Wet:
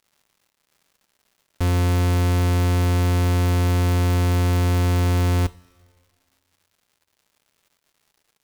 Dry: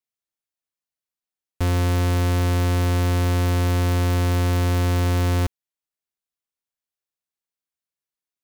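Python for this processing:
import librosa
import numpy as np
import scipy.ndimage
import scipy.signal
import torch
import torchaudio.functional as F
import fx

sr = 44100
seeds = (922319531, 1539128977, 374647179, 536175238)

y = fx.dmg_crackle(x, sr, seeds[0], per_s=260.0, level_db=-50.0)
y = fx.rev_double_slope(y, sr, seeds[1], early_s=0.25, late_s=1.9, knee_db=-18, drr_db=14.5)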